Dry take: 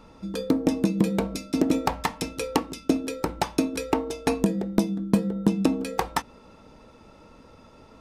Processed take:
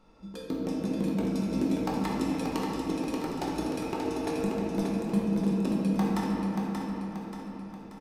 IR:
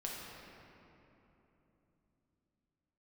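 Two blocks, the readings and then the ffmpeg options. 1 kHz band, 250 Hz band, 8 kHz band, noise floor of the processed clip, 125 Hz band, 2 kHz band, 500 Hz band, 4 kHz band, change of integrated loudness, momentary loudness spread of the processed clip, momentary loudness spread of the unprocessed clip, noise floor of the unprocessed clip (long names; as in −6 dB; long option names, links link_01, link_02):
−5.0 dB, −3.0 dB, −8.5 dB, −44 dBFS, −2.0 dB, −6.0 dB, −4.5 dB, −7.0 dB, −4.0 dB, 10 LU, 6 LU, −52 dBFS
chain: -filter_complex "[0:a]aecho=1:1:582|1164|1746|2328|2910|3492:0.562|0.27|0.13|0.0622|0.0299|0.0143[link_01];[1:a]atrim=start_sample=2205,asetrate=48510,aresample=44100[link_02];[link_01][link_02]afir=irnorm=-1:irlink=0,volume=-7dB"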